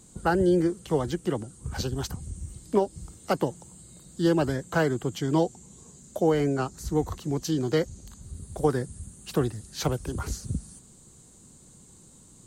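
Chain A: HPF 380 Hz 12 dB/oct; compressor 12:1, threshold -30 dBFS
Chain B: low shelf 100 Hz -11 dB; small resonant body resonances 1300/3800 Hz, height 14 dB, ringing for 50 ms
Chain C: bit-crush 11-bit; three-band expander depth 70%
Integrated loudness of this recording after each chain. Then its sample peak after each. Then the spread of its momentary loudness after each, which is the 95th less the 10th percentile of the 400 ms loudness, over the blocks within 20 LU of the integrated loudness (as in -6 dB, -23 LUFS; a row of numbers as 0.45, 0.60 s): -37.5, -28.5, -26.5 LUFS; -19.0, -9.5, -7.5 dBFS; 18, 19, 13 LU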